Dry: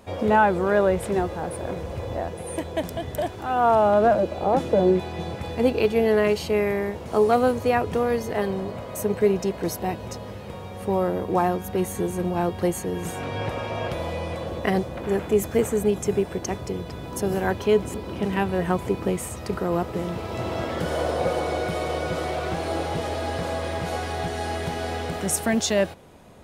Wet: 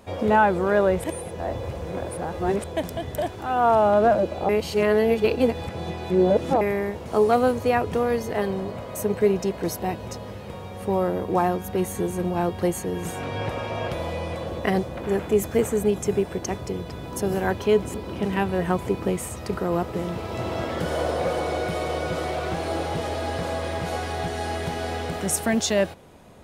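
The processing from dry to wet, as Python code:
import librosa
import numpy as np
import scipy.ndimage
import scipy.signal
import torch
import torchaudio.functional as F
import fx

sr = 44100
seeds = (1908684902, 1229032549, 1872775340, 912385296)

y = fx.clip_hard(x, sr, threshold_db=-19.0, at=(21.16, 23.2))
y = fx.edit(y, sr, fx.reverse_span(start_s=1.04, length_s=1.6),
    fx.reverse_span(start_s=4.49, length_s=2.12), tone=tone)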